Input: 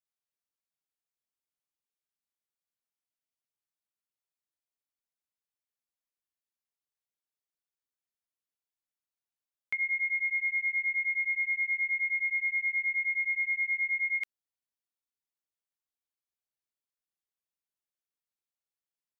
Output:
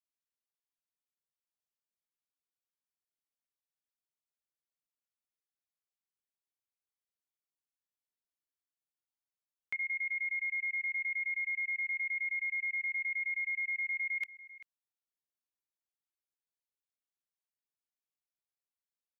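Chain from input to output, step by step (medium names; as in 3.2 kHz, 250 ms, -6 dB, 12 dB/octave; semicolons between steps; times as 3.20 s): echo from a far wall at 67 m, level -13 dB; level held to a coarse grid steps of 17 dB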